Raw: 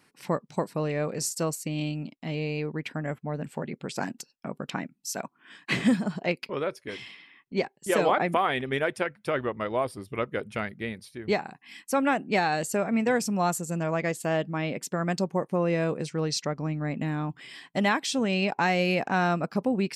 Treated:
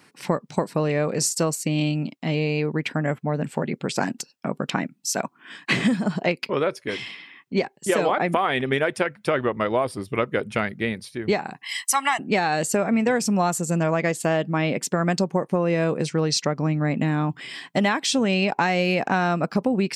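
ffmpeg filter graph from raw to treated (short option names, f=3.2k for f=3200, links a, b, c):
-filter_complex "[0:a]asettb=1/sr,asplit=3[a][b][c];[a]atrim=end=11.634[d];[b]atrim=start=11.63:end=12.19,asetpts=PTS-STARTPTS,afade=t=in:d=0.004:c=qsin,afade=t=out:st=0.556:d=0.004:c=qsin,highpass=820,highshelf=f=2.9k:g=9.5,aecho=1:1:1:0.95,atrim=end_sample=24696[e];[c]atrim=start=12.186[f];[d][e]acrossfade=d=0.004:c1=hsin:c2=qsin[g];[g][f]acrossfade=d=0.004:c1=qsin:c2=hsin,highpass=81,equalizer=f=12k:t=o:w=0.34:g=-5,acompressor=threshold=-26dB:ratio=6,volume=8.5dB"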